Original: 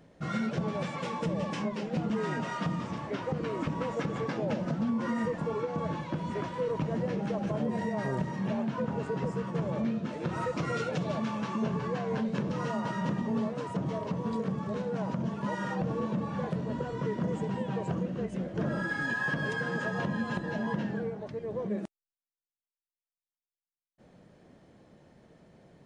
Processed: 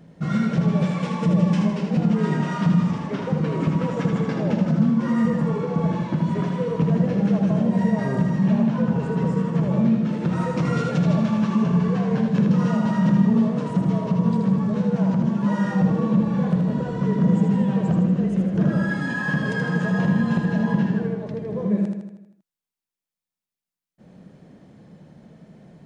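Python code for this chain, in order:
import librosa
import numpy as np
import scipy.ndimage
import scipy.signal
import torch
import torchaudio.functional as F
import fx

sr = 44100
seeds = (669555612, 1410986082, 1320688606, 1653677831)

p1 = fx.peak_eq(x, sr, hz=180.0, db=10.5, octaves=0.91)
p2 = p1 + fx.echo_feedback(p1, sr, ms=79, feedback_pct=56, wet_db=-5.0, dry=0)
y = F.gain(torch.from_numpy(p2), 3.0).numpy()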